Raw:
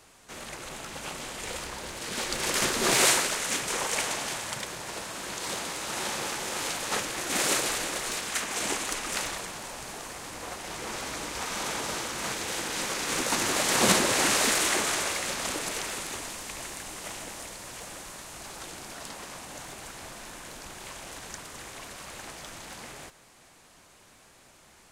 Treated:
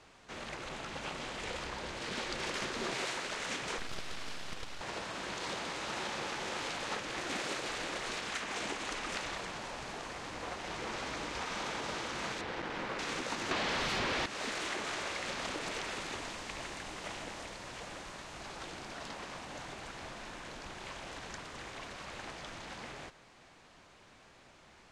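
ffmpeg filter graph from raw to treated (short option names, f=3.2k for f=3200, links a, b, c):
-filter_complex "[0:a]asettb=1/sr,asplit=3[a][b][c];[a]atrim=end=3.784[d];[b]atrim=start=3.78:end=4.81,asetpts=PTS-STARTPTS,afade=t=in:d=0.004:c=qsin,afade=t=out:st=1.026:d=0.004:c=qsin,highpass=240,aeval=exprs='abs(val(0))':c=same[e];[c]atrim=start=4.806[f];[d][e]acrossfade=d=0.004:c1=hsin:c2=qsin[g];[g][f]acrossfade=d=0.004:c1=qsin:c2=hsin,asettb=1/sr,asplit=3[h][i][j];[h]atrim=end=12.414[k];[i]atrim=start=12.41:end=12.99,asetpts=PTS-STARTPTS,afade=t=in:d=0.004:c=qsin,afade=t=out:st=0.576:d=0.004:c=qsin,lowpass=2k,acrusher=bits=5:mix=0:aa=0.5[l];[j]atrim=start=12.986[m];[k][l]acrossfade=d=0.004:c1=hsin:c2=qsin[n];[n][m]acrossfade=d=0.004:c1=qsin:c2=hsin,asettb=1/sr,asplit=3[o][p][q];[o]atrim=end=13.514[r];[p]atrim=start=13.51:end=14.26,asetpts=PTS-STARTPTS,afade=t=in:d=0.004:c=qsin,afade=t=out:st=0.746:d=0.004:c=qsin,lowpass=4.2k,aeval=exprs='0.316*sin(PI/2*6.31*val(0)/0.316)':c=same[s];[q]atrim=start=14.256[t];[r][s]acrossfade=d=0.004:c1=hsin:c2=qsin[u];[u][t]acrossfade=d=0.004:c1=qsin:c2=hsin,lowpass=4.5k,acompressor=threshold=-33dB:ratio=6,volume=-1.5dB"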